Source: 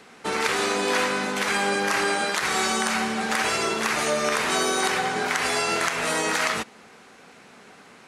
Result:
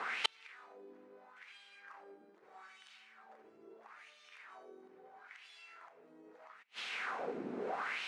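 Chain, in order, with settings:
LFO wah 0.77 Hz 300–3,300 Hz, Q 2.8
gate with flip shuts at −33 dBFS, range −42 dB
level +17 dB

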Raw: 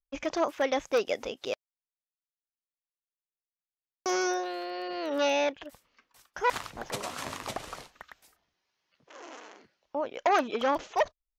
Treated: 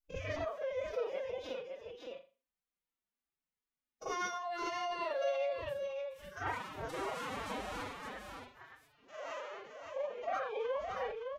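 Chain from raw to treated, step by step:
spectrum averaged block by block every 50 ms
downward compressor 4 to 1, threshold −43 dBFS, peak gain reduction 16 dB
single-tap delay 564 ms −5.5 dB
convolution reverb, pre-delay 40 ms, DRR −8 dB
phase-vocoder pitch shift with formants kept +11.5 semitones
level −2.5 dB

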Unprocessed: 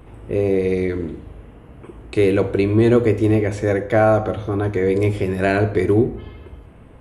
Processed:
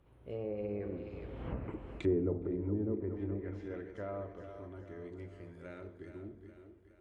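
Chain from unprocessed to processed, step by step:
source passing by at 0:01.52, 35 m/s, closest 2.3 metres
echo with a time of its own for lows and highs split 350 Hz, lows 210 ms, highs 417 ms, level −9.5 dB
treble cut that deepens with the level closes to 600 Hz, closed at −35.5 dBFS
level +4.5 dB

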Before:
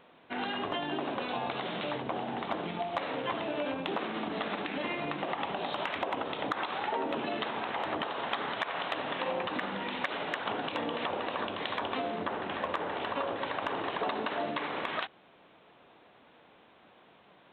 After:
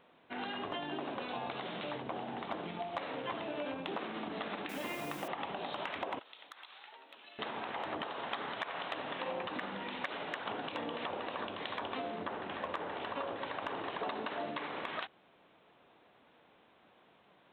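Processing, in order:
0:04.69–0:05.28: bit-depth reduction 8 bits, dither triangular
0:06.19–0:07.39: first difference
level −5.5 dB

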